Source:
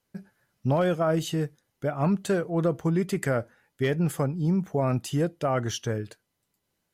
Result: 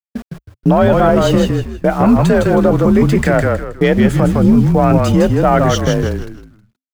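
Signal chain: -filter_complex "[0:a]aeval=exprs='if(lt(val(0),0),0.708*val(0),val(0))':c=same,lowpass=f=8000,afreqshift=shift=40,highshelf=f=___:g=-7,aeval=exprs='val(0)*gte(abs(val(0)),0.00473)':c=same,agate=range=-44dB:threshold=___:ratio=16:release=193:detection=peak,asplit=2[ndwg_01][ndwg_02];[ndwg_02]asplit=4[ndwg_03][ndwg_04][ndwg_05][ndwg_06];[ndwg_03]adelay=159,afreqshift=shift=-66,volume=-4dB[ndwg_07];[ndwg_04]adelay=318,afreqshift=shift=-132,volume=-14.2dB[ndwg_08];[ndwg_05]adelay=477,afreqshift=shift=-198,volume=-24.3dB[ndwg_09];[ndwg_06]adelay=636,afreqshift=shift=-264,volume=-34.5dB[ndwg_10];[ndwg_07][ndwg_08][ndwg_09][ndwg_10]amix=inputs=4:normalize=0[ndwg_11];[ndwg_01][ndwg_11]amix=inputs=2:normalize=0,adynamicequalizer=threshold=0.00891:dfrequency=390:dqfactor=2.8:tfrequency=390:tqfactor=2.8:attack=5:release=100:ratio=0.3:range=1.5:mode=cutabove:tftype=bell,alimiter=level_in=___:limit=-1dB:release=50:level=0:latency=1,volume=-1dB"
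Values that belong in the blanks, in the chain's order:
3900, -43dB, 17dB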